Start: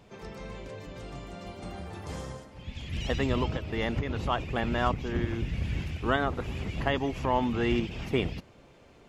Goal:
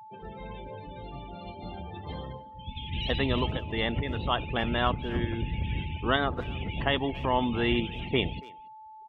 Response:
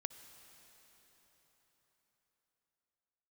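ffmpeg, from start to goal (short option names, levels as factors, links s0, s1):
-filter_complex "[0:a]lowpass=f=3700:t=q:w=2.5,afftdn=nr=30:nf=-40,asplit=2[s0][s1];[s1]adelay=280,highpass=300,lowpass=3400,asoftclip=type=hard:threshold=0.1,volume=0.0891[s2];[s0][s2]amix=inputs=2:normalize=0,aeval=exprs='val(0)+0.00562*sin(2*PI*870*n/s)':c=same"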